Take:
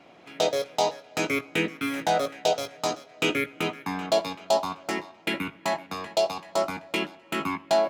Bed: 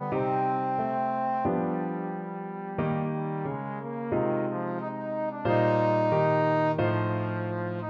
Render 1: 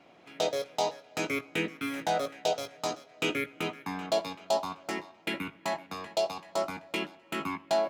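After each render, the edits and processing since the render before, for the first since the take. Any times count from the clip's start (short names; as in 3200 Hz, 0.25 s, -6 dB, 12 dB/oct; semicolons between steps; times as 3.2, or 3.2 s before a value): gain -5 dB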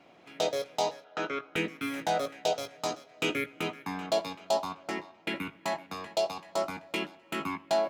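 1.04–1.56 speaker cabinet 210–4800 Hz, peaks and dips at 260 Hz -7 dB, 1400 Hz +10 dB, 2300 Hz -9 dB, 4600 Hz -9 dB; 4.72–5.36 high shelf 7300 Hz -8.5 dB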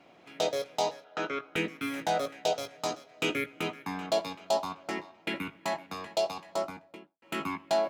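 6.42–7.22 studio fade out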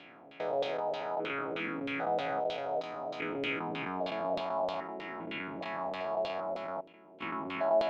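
stepped spectrum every 0.4 s; LFO low-pass saw down 3.2 Hz 520–3700 Hz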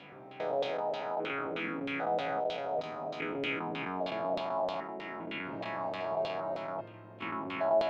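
add bed -24.5 dB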